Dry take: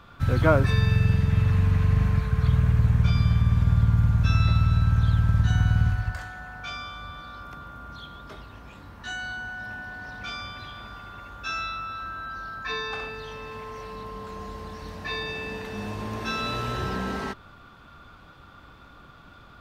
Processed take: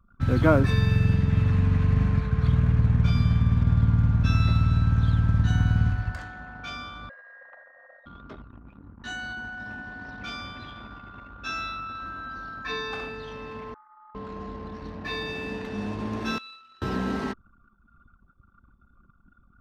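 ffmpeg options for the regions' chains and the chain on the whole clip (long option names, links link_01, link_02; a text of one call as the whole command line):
ffmpeg -i in.wav -filter_complex "[0:a]asettb=1/sr,asplit=3[link_01][link_02][link_03];[link_01]atrim=end=7.094[link_04];[link_02]atrim=start=7.09:end=8.06,asetpts=PTS-STARTPTS,afade=type=in:duration=0.004:curve=qsin,afade=type=out:start_time=0.966:duration=0.004:curve=qsin,afreqshift=460,asuperpass=centerf=1100:order=4:qfactor=1[link_05];[link_03]atrim=start=8.056[link_06];[link_04][link_05]acrossfade=duration=0.004:curve1=hsin:curve2=qsin[link_07];[link_07][link_06]acrossfade=duration=0.004:curve1=qsin:curve2=hsin,asettb=1/sr,asplit=3[link_08][link_09][link_10];[link_08]atrim=end=13.744[link_11];[link_09]atrim=start=13.74:end=14.15,asetpts=PTS-STARTPTS,afade=type=in:duration=0.004:curve=qsin,afade=type=out:start_time=0.406:duration=0.004:curve=qsin,asuperpass=centerf=1400:order=8:qfactor=1.8,aecho=1:1:5.9:0.65,atrim=end_sample=18081,aeval=exprs='val(0)*sin(2*PI*190*n/s)':channel_layout=same[link_12];[link_10]atrim=start=14.146[link_13];[link_11][link_12]acrossfade=duration=0.004:curve1=hsin:curve2=qsin[link_14];[link_14][link_13]acrossfade=duration=0.004:curve1=qsin:curve2=hsin,asettb=1/sr,asplit=3[link_15][link_16][link_17];[link_15]atrim=end=16.384[link_18];[link_16]atrim=start=16.38:end=16.82,asetpts=PTS-STARTPTS,afade=type=in:duration=0.004:curve=qsin,afade=type=out:start_time=0.436:duration=0.004:curve=qsin,acrossover=split=4600[link_19][link_20];[link_20]acompressor=threshold=-52dB:ratio=4:attack=1:release=60[link_21];[link_19][link_21]amix=inputs=2:normalize=0,aderivative[link_22];[link_17]atrim=start=16.816[link_23];[link_18][link_22]acrossfade=duration=0.004:curve1=hsin:curve2=qsin[link_24];[link_24][link_23]acrossfade=duration=0.004:curve1=qsin:curve2=hsin,anlmdn=0.251,equalizer=frequency=260:width_type=o:width=0.94:gain=8,volume=-1.5dB" out.wav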